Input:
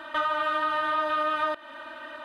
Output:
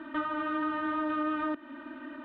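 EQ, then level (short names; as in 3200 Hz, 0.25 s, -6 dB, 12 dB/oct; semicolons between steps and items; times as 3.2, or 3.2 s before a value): EQ curve 140 Hz 0 dB, 270 Hz +14 dB, 560 Hz -8 dB, 2300 Hz -7 dB, 5600 Hz -22 dB; 0.0 dB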